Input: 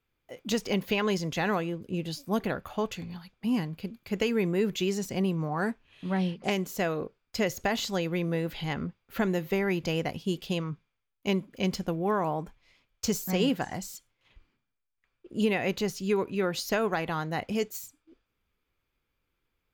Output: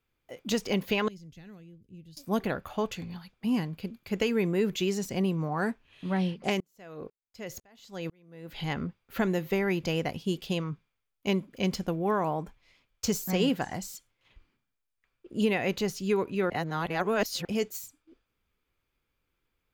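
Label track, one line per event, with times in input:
1.080000	2.170000	guitar amp tone stack bass-middle-treble 10-0-1
6.600000	8.600000	tremolo with a ramp in dB swelling 2 Hz, depth 39 dB
16.500000	17.450000	reverse

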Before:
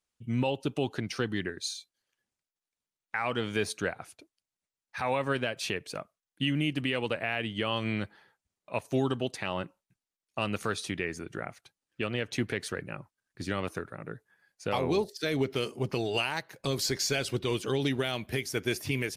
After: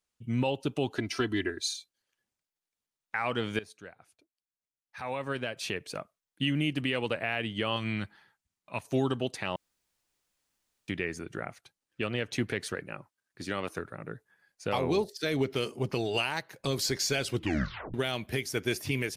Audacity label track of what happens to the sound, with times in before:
0.970000	1.760000	comb filter 3 ms, depth 80%
3.590000	5.930000	fade in quadratic, from −16.5 dB
7.760000	8.870000	parametric band 490 Hz −9 dB 0.93 octaves
9.560000	10.880000	fill with room tone
12.750000	13.780000	low-shelf EQ 130 Hz −11 dB
17.340000	17.340000	tape stop 0.60 s

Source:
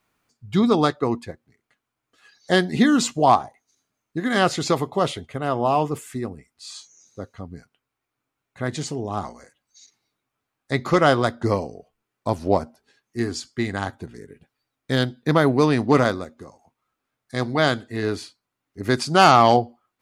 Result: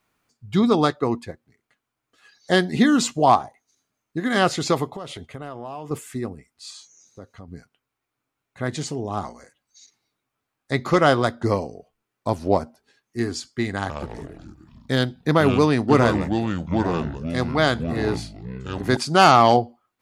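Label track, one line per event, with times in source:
4.850000	5.910000	downward compressor 8 to 1, threshold −30 dBFS
6.700000	7.480000	downward compressor 2 to 1, threshold −40 dBFS
13.770000	18.970000	delay with pitch and tempo change per echo 120 ms, each echo −5 semitones, echoes 3, each echo −6 dB

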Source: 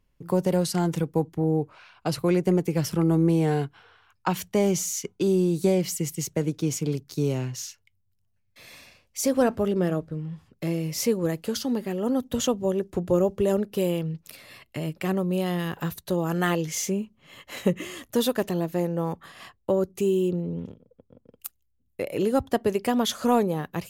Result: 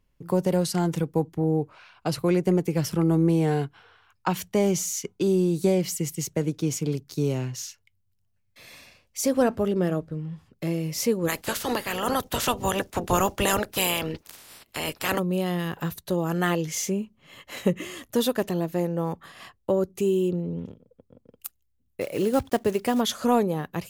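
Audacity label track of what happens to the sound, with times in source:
11.270000	15.180000	ceiling on every frequency bin ceiling under each frame's peak by 26 dB
22.010000	23.010000	one scale factor per block 5 bits

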